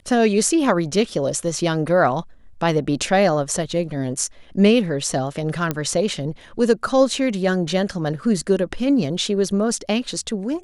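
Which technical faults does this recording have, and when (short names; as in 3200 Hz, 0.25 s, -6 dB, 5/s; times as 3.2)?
5.71 pop -8 dBFS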